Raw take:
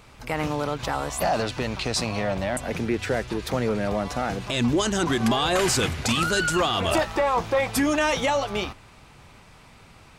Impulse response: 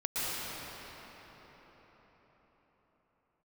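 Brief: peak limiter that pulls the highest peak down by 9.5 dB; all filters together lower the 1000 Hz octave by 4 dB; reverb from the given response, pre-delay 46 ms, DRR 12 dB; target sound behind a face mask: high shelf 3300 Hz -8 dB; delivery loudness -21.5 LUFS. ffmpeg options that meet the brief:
-filter_complex "[0:a]equalizer=f=1k:t=o:g=-4.5,alimiter=limit=-21dB:level=0:latency=1,asplit=2[a][b];[1:a]atrim=start_sample=2205,adelay=46[c];[b][c]afir=irnorm=-1:irlink=0,volume=-20.5dB[d];[a][d]amix=inputs=2:normalize=0,highshelf=f=3.3k:g=-8,volume=9.5dB"

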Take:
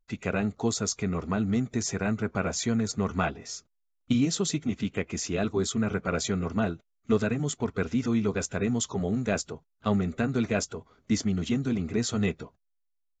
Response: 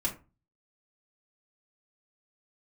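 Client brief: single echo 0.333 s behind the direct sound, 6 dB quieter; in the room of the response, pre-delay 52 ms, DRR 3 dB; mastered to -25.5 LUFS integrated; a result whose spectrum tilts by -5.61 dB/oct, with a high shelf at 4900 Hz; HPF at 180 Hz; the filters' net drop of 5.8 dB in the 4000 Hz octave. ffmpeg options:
-filter_complex "[0:a]highpass=180,equalizer=f=4k:t=o:g=-5,highshelf=f=4.9k:g=-4.5,aecho=1:1:333:0.501,asplit=2[a][b];[1:a]atrim=start_sample=2205,adelay=52[c];[b][c]afir=irnorm=-1:irlink=0,volume=-8dB[d];[a][d]amix=inputs=2:normalize=0,volume=1.5dB"

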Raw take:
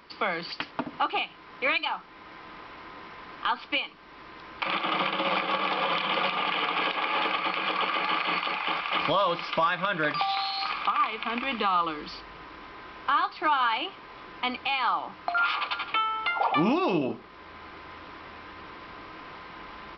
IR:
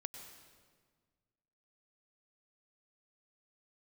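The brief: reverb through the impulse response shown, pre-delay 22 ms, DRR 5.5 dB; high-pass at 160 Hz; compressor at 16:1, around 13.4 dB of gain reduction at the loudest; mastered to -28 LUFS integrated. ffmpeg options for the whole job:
-filter_complex "[0:a]highpass=160,acompressor=threshold=-34dB:ratio=16,asplit=2[a][b];[1:a]atrim=start_sample=2205,adelay=22[c];[b][c]afir=irnorm=-1:irlink=0,volume=-2.5dB[d];[a][d]amix=inputs=2:normalize=0,volume=9.5dB"

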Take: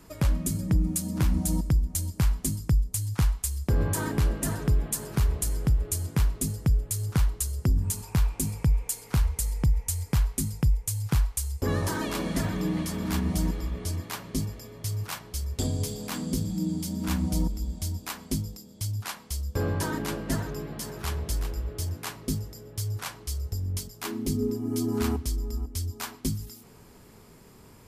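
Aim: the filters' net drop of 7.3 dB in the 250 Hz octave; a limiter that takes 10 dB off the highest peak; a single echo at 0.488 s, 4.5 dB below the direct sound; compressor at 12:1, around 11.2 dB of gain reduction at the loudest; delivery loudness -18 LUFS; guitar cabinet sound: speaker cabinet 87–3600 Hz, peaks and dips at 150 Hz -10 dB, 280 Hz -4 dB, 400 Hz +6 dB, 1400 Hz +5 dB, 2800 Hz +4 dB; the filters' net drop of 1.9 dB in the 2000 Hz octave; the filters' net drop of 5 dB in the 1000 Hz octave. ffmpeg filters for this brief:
-af "equalizer=f=250:t=o:g=-6,equalizer=f=1k:t=o:g=-7,equalizer=f=2k:t=o:g=-3,acompressor=threshold=-30dB:ratio=12,alimiter=level_in=5dB:limit=-24dB:level=0:latency=1,volume=-5dB,highpass=87,equalizer=f=150:t=q:w=4:g=-10,equalizer=f=280:t=q:w=4:g=-4,equalizer=f=400:t=q:w=4:g=6,equalizer=f=1.4k:t=q:w=4:g=5,equalizer=f=2.8k:t=q:w=4:g=4,lowpass=f=3.6k:w=0.5412,lowpass=f=3.6k:w=1.3066,aecho=1:1:488:0.596,volume=23.5dB"

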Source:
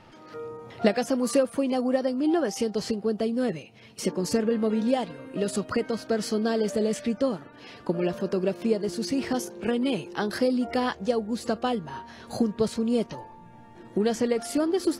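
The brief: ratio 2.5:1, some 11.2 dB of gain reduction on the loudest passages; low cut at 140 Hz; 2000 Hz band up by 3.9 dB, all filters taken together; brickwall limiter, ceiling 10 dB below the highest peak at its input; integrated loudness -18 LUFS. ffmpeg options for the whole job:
-af "highpass=140,equalizer=f=2k:t=o:g=5,acompressor=threshold=-35dB:ratio=2.5,volume=20dB,alimiter=limit=-7.5dB:level=0:latency=1"

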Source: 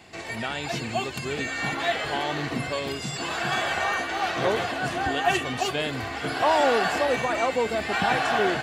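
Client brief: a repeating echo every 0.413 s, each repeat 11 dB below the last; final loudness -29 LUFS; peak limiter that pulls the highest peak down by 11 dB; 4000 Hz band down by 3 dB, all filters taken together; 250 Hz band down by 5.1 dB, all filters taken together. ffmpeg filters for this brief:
-af "equalizer=f=250:t=o:g=-7,equalizer=f=4k:t=o:g=-4,alimiter=limit=-21dB:level=0:latency=1,aecho=1:1:413|826|1239:0.282|0.0789|0.0221,volume=1dB"

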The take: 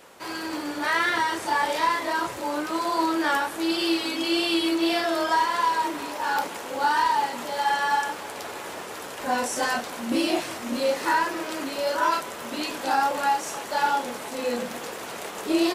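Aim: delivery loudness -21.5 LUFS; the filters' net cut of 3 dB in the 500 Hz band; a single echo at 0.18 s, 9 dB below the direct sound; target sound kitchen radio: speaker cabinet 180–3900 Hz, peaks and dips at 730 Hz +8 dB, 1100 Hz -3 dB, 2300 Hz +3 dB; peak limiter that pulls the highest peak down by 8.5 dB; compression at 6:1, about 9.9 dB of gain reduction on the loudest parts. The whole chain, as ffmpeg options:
-af "equalizer=f=500:t=o:g=-7.5,acompressor=threshold=-31dB:ratio=6,alimiter=level_in=2dB:limit=-24dB:level=0:latency=1,volume=-2dB,highpass=180,equalizer=f=730:t=q:w=4:g=8,equalizer=f=1.1k:t=q:w=4:g=-3,equalizer=f=2.3k:t=q:w=4:g=3,lowpass=f=3.9k:w=0.5412,lowpass=f=3.9k:w=1.3066,aecho=1:1:180:0.355,volume=13dB"

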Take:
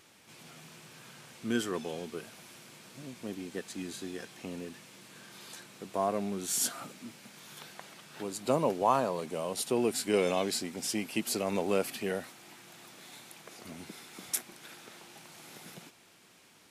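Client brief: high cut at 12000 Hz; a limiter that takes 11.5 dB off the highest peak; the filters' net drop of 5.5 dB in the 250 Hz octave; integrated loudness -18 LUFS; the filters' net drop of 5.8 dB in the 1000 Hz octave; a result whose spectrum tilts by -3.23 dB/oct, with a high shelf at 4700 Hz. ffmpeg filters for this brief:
-af "lowpass=12k,equalizer=f=250:t=o:g=-7,equalizer=f=1k:t=o:g=-7.5,highshelf=f=4.7k:g=6.5,volume=19.5dB,alimiter=limit=-3dB:level=0:latency=1"

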